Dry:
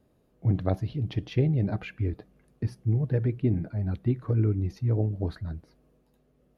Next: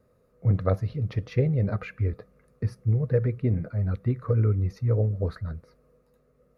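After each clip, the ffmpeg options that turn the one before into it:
ffmpeg -i in.wav -af "equalizer=frequency=100:width_type=o:width=0.33:gain=4,equalizer=frequency=315:width_type=o:width=0.33:gain=-10,equalizer=frequency=500:width_type=o:width=0.33:gain=11,equalizer=frequency=800:width_type=o:width=0.33:gain=-6,equalizer=frequency=1250:width_type=o:width=0.33:gain=11,equalizer=frequency=2000:width_type=o:width=0.33:gain=4,equalizer=frequency=3150:width_type=o:width=0.33:gain=-9" out.wav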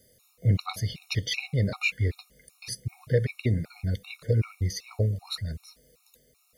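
ffmpeg -i in.wav -af "aexciter=amount=5.6:drive=9.5:freq=2200,afftfilt=real='re*gt(sin(2*PI*2.6*pts/sr)*(1-2*mod(floor(b*sr/1024/730),2)),0)':imag='im*gt(sin(2*PI*2.6*pts/sr)*(1-2*mod(floor(b*sr/1024/730),2)),0)':win_size=1024:overlap=0.75" out.wav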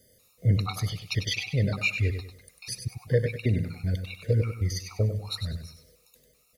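ffmpeg -i in.wav -af "aecho=1:1:98|196|294|392:0.398|0.127|0.0408|0.013" out.wav

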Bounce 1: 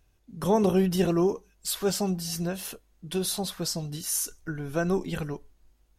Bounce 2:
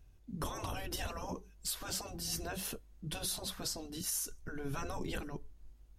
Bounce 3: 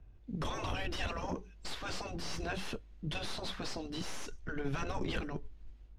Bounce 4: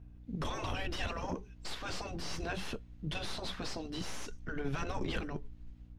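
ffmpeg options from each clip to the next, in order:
ffmpeg -i in.wav -af "afftfilt=real='re*lt(hypot(re,im),0.126)':imag='im*lt(hypot(re,im),0.126)':win_size=1024:overlap=0.75,lowshelf=frequency=240:gain=10,alimiter=limit=-22dB:level=0:latency=1:release=480,volume=-3.5dB" out.wav
ffmpeg -i in.wav -filter_complex "[0:a]acrossover=split=130|1000|2100[link_01][link_02][link_03][link_04];[link_04]dynaudnorm=framelen=150:gausssize=3:maxgain=11.5dB[link_05];[link_01][link_02][link_03][link_05]amix=inputs=4:normalize=0,aeval=exprs='(tanh(44.7*val(0)+0.45)-tanh(0.45))/44.7':channel_layout=same,adynamicsmooth=sensitivity=1.5:basefreq=2400,volume=6dB" out.wav
ffmpeg -i in.wav -af "aeval=exprs='val(0)+0.00224*(sin(2*PI*60*n/s)+sin(2*PI*2*60*n/s)/2+sin(2*PI*3*60*n/s)/3+sin(2*PI*4*60*n/s)/4+sin(2*PI*5*60*n/s)/5)':channel_layout=same" out.wav

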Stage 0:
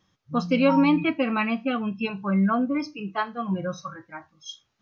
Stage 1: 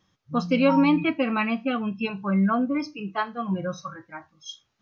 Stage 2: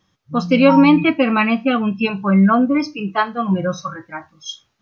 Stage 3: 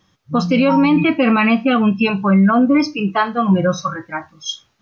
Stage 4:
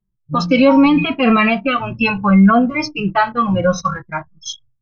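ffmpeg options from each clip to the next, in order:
ffmpeg -i in.wav -af anull out.wav
ffmpeg -i in.wav -af "dynaudnorm=framelen=290:gausssize=3:maxgain=5.5dB,volume=3.5dB" out.wav
ffmpeg -i in.wav -af "alimiter=limit=-11.5dB:level=0:latency=1:release=36,volume=5dB" out.wav
ffmpeg -i in.wav -filter_complex "[0:a]asubboost=boost=8.5:cutoff=96,anlmdn=15.8,asplit=2[link_01][link_02];[link_02]adelay=2.5,afreqshift=-0.72[link_03];[link_01][link_03]amix=inputs=2:normalize=1,volume=5.5dB" out.wav

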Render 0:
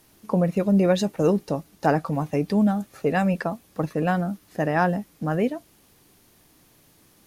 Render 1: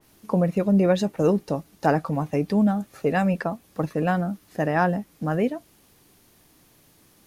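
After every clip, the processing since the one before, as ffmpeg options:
ffmpeg -i in.wav -af "adynamicequalizer=threshold=0.01:dfrequency=2800:dqfactor=0.7:tfrequency=2800:tqfactor=0.7:attack=5:release=100:ratio=0.375:range=2.5:mode=cutabove:tftype=highshelf" out.wav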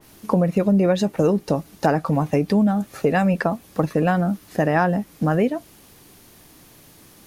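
ffmpeg -i in.wav -af "acompressor=threshold=-25dB:ratio=3,volume=8.5dB" out.wav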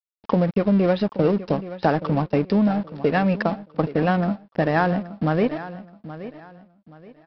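ffmpeg -i in.wav -af "aresample=11025,aeval=exprs='sgn(val(0))*max(abs(val(0))-0.0237,0)':channel_layout=same,aresample=44100,aecho=1:1:825|1650|2475:0.188|0.0565|0.017" out.wav

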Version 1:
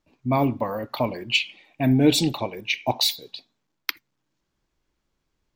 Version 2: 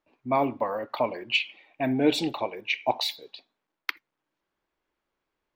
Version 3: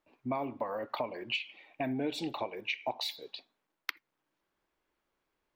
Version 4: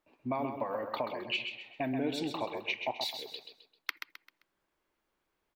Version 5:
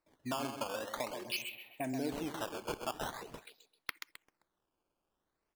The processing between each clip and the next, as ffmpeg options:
ffmpeg -i in.wav -af "bass=frequency=250:gain=-15,treble=frequency=4000:gain=-14" out.wav
ffmpeg -i in.wav -af "acompressor=threshold=-32dB:ratio=5" out.wav
ffmpeg -i in.wav -af "aecho=1:1:131|262|393|524:0.447|0.156|0.0547|0.0192" out.wav
ffmpeg -i in.wav -af "acrusher=samples=13:mix=1:aa=0.000001:lfo=1:lforange=20.8:lforate=0.46,volume=-4dB" out.wav

